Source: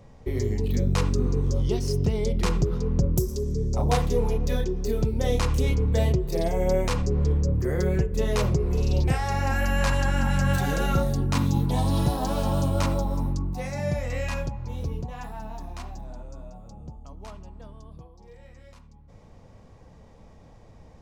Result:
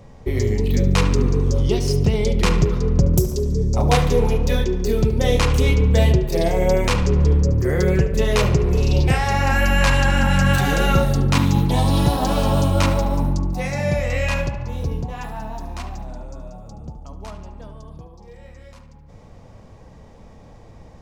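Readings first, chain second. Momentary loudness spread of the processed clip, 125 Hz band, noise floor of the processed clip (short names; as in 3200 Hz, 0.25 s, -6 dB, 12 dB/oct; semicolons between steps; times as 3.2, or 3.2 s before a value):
15 LU, +6.5 dB, -44 dBFS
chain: dynamic EQ 2600 Hz, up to +5 dB, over -47 dBFS, Q 1.1; tape echo 73 ms, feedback 72%, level -10.5 dB, low-pass 3900 Hz; gain +6 dB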